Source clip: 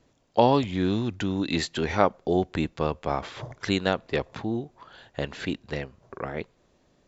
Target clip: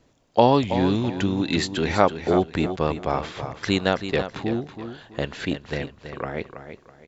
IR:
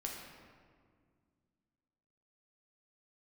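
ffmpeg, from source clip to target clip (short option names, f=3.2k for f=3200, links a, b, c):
-af "aecho=1:1:327|654|981:0.316|0.0949|0.0285,volume=3dB"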